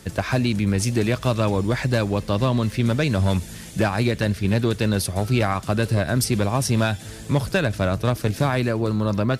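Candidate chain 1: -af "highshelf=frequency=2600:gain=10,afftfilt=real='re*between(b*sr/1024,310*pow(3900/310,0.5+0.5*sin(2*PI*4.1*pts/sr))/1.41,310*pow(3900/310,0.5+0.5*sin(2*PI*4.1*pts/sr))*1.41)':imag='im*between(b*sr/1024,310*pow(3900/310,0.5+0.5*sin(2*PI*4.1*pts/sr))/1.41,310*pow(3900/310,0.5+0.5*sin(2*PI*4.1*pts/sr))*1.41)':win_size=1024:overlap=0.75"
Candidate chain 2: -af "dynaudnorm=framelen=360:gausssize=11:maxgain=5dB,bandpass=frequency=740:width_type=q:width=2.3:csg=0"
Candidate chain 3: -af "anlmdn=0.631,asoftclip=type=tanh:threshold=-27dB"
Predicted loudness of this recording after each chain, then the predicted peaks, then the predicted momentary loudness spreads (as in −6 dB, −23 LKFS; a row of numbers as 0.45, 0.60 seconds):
−31.5, −29.0, −31.0 LKFS; −13.0, −10.5, −27.0 dBFS; 6, 8, 2 LU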